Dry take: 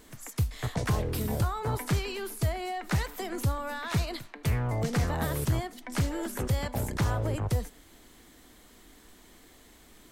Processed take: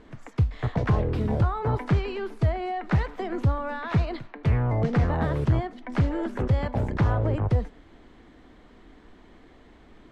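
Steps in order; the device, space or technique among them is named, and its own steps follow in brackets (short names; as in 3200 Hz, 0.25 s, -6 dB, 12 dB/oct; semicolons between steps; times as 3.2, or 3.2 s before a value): phone in a pocket (LPF 3400 Hz 12 dB/oct; high shelf 2100 Hz -9.5 dB); gain +5.5 dB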